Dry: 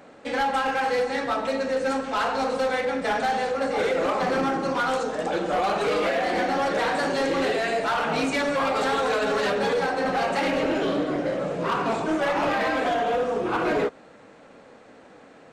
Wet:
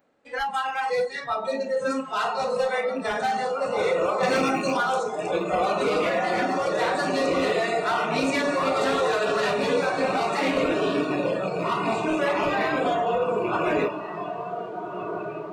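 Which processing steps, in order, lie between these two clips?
rattle on loud lows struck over -32 dBFS, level -24 dBFS; on a send: echo that smears into a reverb 1558 ms, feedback 56%, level -6 dB; on the sum: spectral noise reduction 19 dB; 4.23–4.77 s: treble shelf 2.7 kHz +10.5 dB

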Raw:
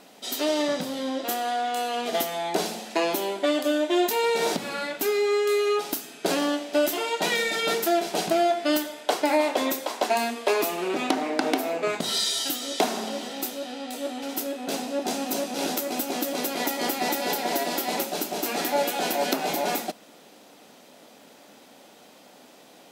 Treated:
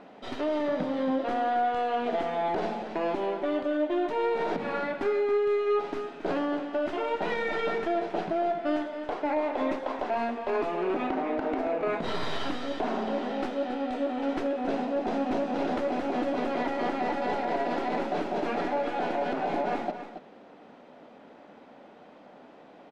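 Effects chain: tracing distortion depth 0.17 ms; low-pass 1.7 kHz 12 dB/octave; gain riding within 4 dB 0.5 s; peak limiter -20.5 dBFS, peak gain reduction 11 dB; on a send: delay 275 ms -10 dB

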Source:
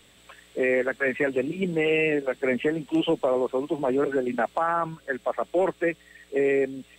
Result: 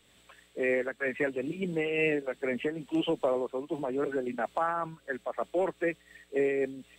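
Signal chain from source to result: random flutter of the level, depth 65%; trim -2.5 dB

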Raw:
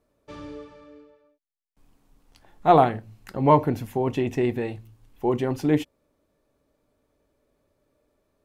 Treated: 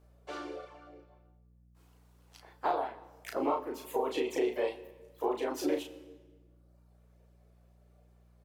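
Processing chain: high-pass 330 Hz 24 dB/octave; reverb removal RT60 1.3 s; dynamic bell 1.8 kHz, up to -6 dB, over -46 dBFS, Q 4.3; compression 16:1, threshold -30 dBFS, peak gain reduction 19.5 dB; harmony voices +3 st -7 dB, +4 st -8 dB; hum 60 Hz, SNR 24 dB; doubling 35 ms -4 dB; reverberation RT60 1.4 s, pre-delay 39 ms, DRR 14.5 dB

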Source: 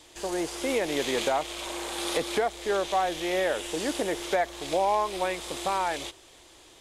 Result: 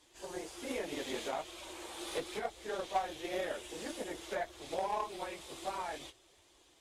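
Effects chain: phase randomisation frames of 50 ms; Chebyshev shaper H 3 -17 dB, 6 -34 dB, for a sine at -11.5 dBFS; trim -7.5 dB

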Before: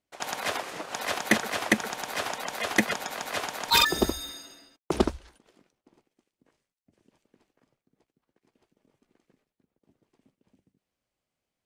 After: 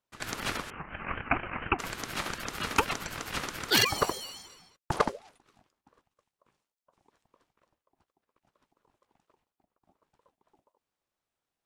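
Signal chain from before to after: 0.70–1.79 s: rippled Chebyshev low-pass 2.3 kHz, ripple 3 dB; ring modulator with a swept carrier 640 Hz, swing 30%, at 4.2 Hz

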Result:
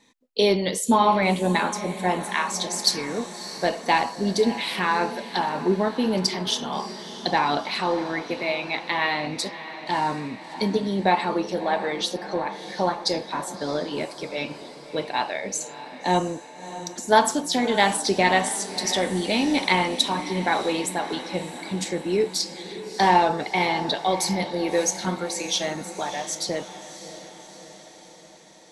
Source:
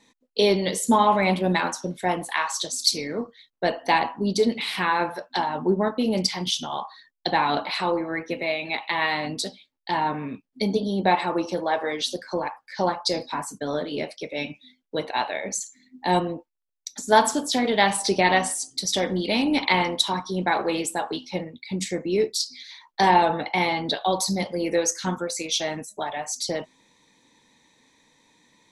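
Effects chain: echo that smears into a reverb 644 ms, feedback 59%, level -13 dB

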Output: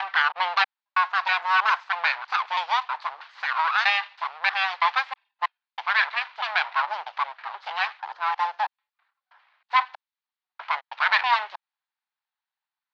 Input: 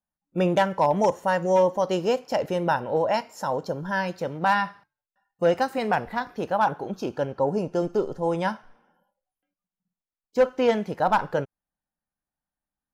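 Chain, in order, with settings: slices played last to first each 321 ms, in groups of 3; full-wave rectifier; elliptic band-pass 860–4300 Hz, stop band 50 dB; trim +7.5 dB

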